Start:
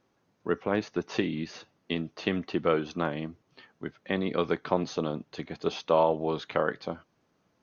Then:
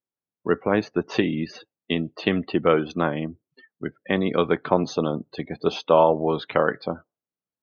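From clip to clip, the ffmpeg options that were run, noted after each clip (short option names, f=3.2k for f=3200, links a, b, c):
-af "afftdn=nr=34:nf=-45,volume=6.5dB"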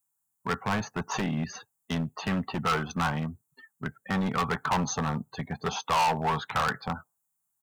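-af "firequalizer=gain_entry='entry(120,0);entry(560,-13);entry(830,5);entry(1500,1);entry(2200,-8);entry(4900,-7);entry(7200,15)':delay=0.05:min_phase=1,volume=25dB,asoftclip=hard,volume=-25dB,equalizer=f=320:w=4.2:g=-14,volume=3.5dB"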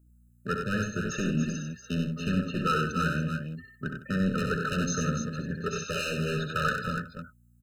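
-af "aeval=exprs='val(0)+0.00112*(sin(2*PI*60*n/s)+sin(2*PI*2*60*n/s)/2+sin(2*PI*3*60*n/s)/3+sin(2*PI*4*60*n/s)/4+sin(2*PI*5*60*n/s)/5)':c=same,aecho=1:1:65|95|157|273|292:0.447|0.501|0.168|0.168|0.422,afftfilt=real='re*eq(mod(floor(b*sr/1024/610),2),0)':imag='im*eq(mod(floor(b*sr/1024/610),2),0)':win_size=1024:overlap=0.75"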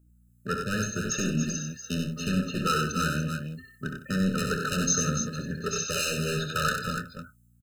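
-filter_complex "[0:a]acrossover=split=4800[a][b];[b]dynaudnorm=f=220:g=5:m=11.5dB[c];[a][c]amix=inputs=2:normalize=0,asplit=2[d][e];[e]adelay=27,volume=-13dB[f];[d][f]amix=inputs=2:normalize=0"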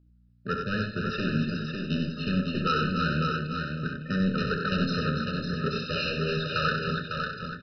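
-filter_complex "[0:a]asplit=2[a][b];[b]aecho=0:1:551|1102|1653:0.562|0.0844|0.0127[c];[a][c]amix=inputs=2:normalize=0,aresample=11025,aresample=44100"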